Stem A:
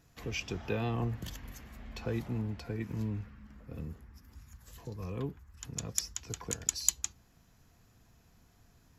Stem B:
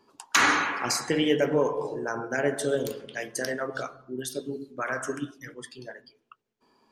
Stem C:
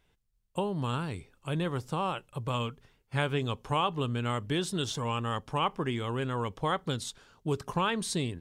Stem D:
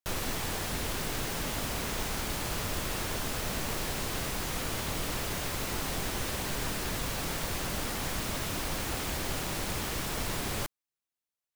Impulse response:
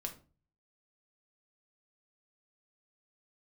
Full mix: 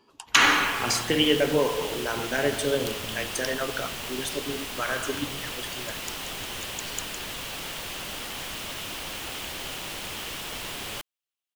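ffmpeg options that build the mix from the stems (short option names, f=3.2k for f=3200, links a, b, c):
-filter_complex "[0:a]adelay=100,volume=-8dB[a];[1:a]volume=0.5dB[b];[3:a]lowshelf=f=240:g=-9,adelay=350,volume=-1.5dB[c];[a][b][c]amix=inputs=3:normalize=0,equalizer=f=3k:t=o:w=0.59:g=8.5"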